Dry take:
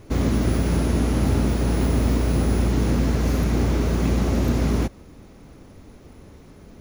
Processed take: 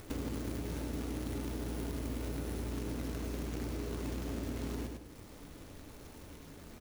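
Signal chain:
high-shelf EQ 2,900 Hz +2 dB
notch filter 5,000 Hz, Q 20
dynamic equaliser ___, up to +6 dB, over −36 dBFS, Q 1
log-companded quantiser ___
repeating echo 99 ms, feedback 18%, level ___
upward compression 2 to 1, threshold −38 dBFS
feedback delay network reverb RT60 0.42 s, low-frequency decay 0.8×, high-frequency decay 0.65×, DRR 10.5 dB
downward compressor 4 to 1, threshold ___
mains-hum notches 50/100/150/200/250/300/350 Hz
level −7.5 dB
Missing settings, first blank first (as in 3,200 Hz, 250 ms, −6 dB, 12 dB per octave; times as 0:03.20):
350 Hz, 4 bits, −8 dB, −30 dBFS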